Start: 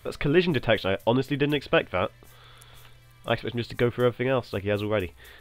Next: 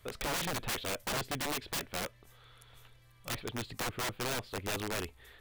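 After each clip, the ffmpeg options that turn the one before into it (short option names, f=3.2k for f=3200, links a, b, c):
-af "aeval=exprs='(mod(11.2*val(0)+1,2)-1)/11.2':c=same,volume=-8dB"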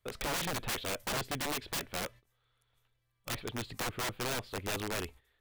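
-af "agate=range=-18dB:threshold=-51dB:ratio=16:detection=peak"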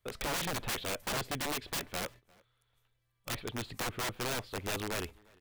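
-filter_complex "[0:a]asplit=2[a][b];[b]adelay=349.9,volume=-26dB,highshelf=f=4k:g=-7.87[c];[a][c]amix=inputs=2:normalize=0"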